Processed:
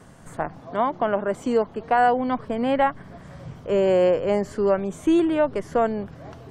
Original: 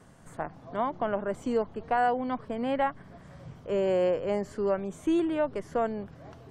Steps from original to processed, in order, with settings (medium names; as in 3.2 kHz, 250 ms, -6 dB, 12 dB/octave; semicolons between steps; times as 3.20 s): 0.61–1.99 s: bass shelf 87 Hz -11 dB; trim +7 dB